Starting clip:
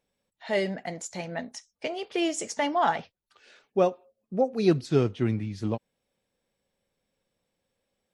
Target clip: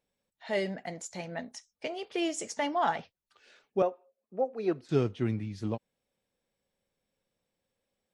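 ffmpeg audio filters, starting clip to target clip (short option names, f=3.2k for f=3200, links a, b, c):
-filter_complex "[0:a]asettb=1/sr,asplit=3[a][b][c];[a]atrim=end=3.824[d];[b]atrim=start=3.82:end=4.89,asetpts=PTS-STARTPTS,afade=t=in:d=0.004:c=qsin,afade=t=out:st=1.066:d=0.004:c=qsin,acrossover=split=320 2200:gain=0.178 1 0.178[e][f][g];[e][f][g]amix=inputs=3:normalize=0[h];[c]atrim=start=4.886[i];[d][h]acrossfade=d=0.004:c1=hsin:c2=qsin[j];[j][i]acrossfade=d=0.004:c1=qsin:c2=hsin,volume=-4dB"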